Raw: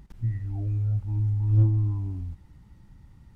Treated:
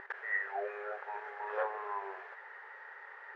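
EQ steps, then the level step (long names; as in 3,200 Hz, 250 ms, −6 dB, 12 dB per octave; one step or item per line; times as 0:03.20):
linear-phase brick-wall high-pass 390 Hz
low-pass with resonance 1,700 Hz, resonance Q 7.3
+14.0 dB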